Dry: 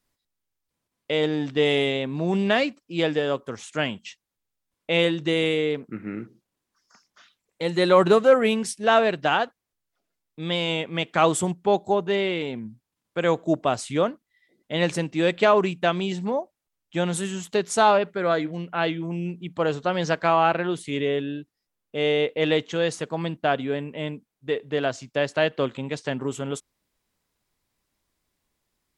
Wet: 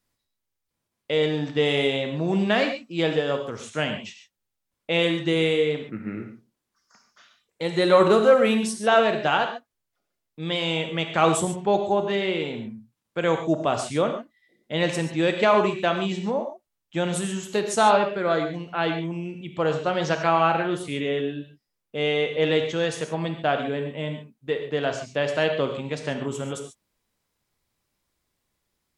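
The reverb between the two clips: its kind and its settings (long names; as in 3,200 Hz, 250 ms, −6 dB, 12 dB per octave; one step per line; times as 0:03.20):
reverb whose tail is shaped and stops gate 160 ms flat, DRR 5 dB
level −1 dB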